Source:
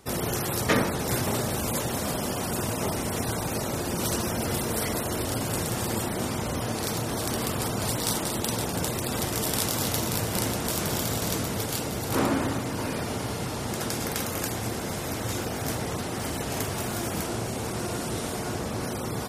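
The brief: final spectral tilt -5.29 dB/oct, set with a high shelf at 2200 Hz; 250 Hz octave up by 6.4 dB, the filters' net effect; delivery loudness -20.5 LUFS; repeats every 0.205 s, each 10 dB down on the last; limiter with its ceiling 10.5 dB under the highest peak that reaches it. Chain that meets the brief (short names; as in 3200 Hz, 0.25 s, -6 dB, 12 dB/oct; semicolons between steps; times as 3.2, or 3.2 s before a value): bell 250 Hz +8 dB; high shelf 2200 Hz -3.5 dB; limiter -19 dBFS; feedback echo 0.205 s, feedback 32%, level -10 dB; gain +8 dB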